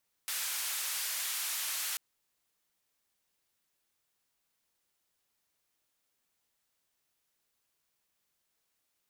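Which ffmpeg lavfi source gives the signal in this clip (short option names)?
-f lavfi -i "anoisesrc=c=white:d=1.69:r=44100:seed=1,highpass=f=1200,lowpass=f=15000,volume=-28.6dB"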